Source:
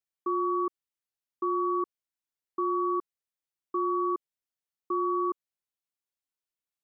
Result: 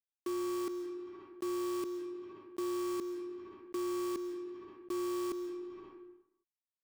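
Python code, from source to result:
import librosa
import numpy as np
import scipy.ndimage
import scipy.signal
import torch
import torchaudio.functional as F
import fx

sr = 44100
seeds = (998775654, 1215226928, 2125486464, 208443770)

y = fx.bin_compress(x, sr, power=0.6)
y = fx.bandpass_q(y, sr, hz=180.0, q=1.4)
y = fx.quant_dither(y, sr, seeds[0], bits=8, dither='none')
y = fx.rev_freeverb(y, sr, rt60_s=0.89, hf_ratio=0.75, predelay_ms=90, drr_db=17.0)
y = fx.env_flatten(y, sr, amount_pct=70)
y = F.gain(torch.from_numpy(y), 2.0).numpy()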